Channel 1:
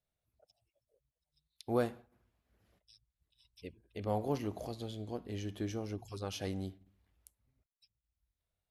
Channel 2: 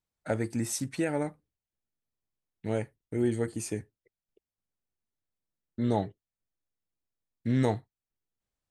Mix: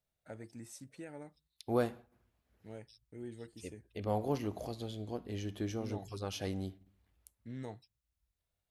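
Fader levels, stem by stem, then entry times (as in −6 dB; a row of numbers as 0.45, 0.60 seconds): +0.5, −18.0 decibels; 0.00, 0.00 seconds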